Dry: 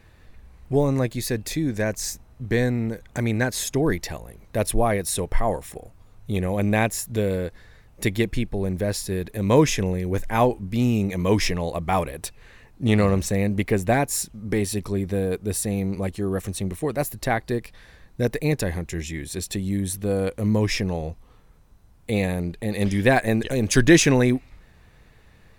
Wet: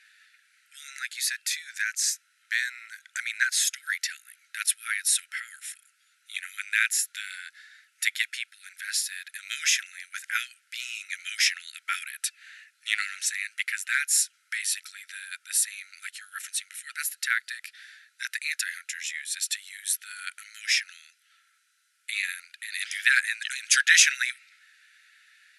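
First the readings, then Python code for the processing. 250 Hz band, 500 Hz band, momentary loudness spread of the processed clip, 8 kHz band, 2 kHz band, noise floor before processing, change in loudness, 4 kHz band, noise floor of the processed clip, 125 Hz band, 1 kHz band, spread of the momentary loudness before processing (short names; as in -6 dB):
under -40 dB, under -40 dB, 16 LU, +4.0 dB, +4.0 dB, -53 dBFS, -3.0 dB, +4.0 dB, -68 dBFS, under -40 dB, -14.5 dB, 10 LU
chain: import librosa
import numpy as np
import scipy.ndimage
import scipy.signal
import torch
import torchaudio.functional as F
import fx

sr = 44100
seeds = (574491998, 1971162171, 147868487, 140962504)

y = fx.brickwall_bandpass(x, sr, low_hz=1300.0, high_hz=12000.0)
y = y * librosa.db_to_amplitude(4.0)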